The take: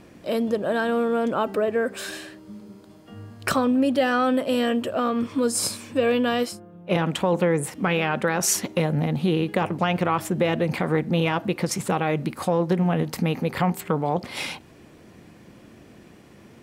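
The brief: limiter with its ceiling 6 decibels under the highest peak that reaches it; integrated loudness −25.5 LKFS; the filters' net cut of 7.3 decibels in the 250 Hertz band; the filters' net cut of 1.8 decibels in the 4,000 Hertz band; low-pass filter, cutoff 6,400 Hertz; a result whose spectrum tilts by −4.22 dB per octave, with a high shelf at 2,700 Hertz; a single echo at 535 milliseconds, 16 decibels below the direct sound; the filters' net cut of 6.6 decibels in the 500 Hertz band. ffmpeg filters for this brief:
ffmpeg -i in.wav -af "lowpass=6400,equalizer=frequency=250:width_type=o:gain=-9,equalizer=frequency=500:width_type=o:gain=-5.5,highshelf=frequency=2700:gain=7.5,equalizer=frequency=4000:width_type=o:gain=-9,alimiter=limit=-16.5dB:level=0:latency=1,aecho=1:1:535:0.158,volume=3.5dB" out.wav

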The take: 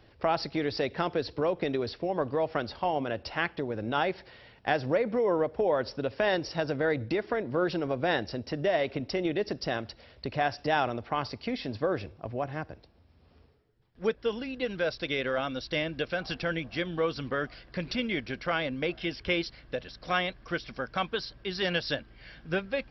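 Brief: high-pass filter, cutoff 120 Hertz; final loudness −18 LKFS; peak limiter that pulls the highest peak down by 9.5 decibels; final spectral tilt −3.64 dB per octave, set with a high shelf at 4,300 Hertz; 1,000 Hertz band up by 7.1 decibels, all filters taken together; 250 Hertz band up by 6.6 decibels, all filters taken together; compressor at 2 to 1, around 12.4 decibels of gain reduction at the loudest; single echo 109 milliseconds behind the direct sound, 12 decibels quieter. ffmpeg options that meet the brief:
ffmpeg -i in.wav -af "highpass=120,equalizer=frequency=250:width_type=o:gain=8.5,equalizer=frequency=1000:width_type=o:gain=9,highshelf=frequency=4300:gain=5.5,acompressor=threshold=-40dB:ratio=2,alimiter=level_in=1dB:limit=-24dB:level=0:latency=1,volume=-1dB,aecho=1:1:109:0.251,volume=19.5dB" out.wav

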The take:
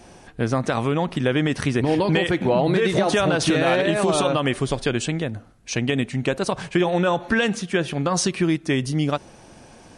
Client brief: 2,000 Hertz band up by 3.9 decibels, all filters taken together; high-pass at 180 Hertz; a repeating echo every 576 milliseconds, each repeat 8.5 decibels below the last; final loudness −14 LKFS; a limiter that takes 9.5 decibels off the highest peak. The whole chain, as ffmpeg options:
ffmpeg -i in.wav -af "highpass=180,equalizer=frequency=2000:width_type=o:gain=5,alimiter=limit=-14dB:level=0:latency=1,aecho=1:1:576|1152|1728|2304:0.376|0.143|0.0543|0.0206,volume=10.5dB" out.wav

